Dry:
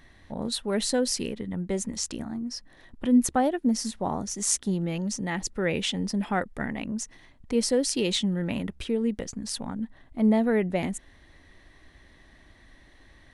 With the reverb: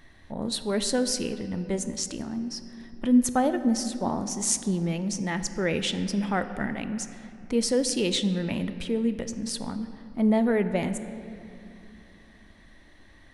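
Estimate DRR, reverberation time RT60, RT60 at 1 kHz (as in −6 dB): 9.5 dB, 2.8 s, 2.7 s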